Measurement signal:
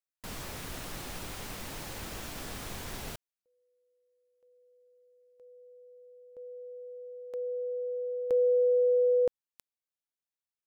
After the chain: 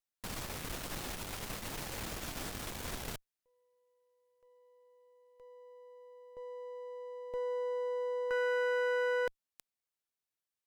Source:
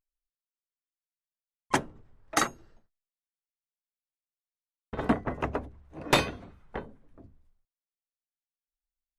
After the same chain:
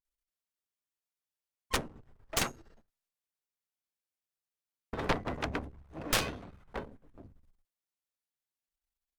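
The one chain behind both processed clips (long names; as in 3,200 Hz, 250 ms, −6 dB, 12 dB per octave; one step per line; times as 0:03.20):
gain on one half-wave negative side −12 dB
harmonic generator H 3 −18 dB, 7 −8 dB, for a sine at −11.5 dBFS
level −3.5 dB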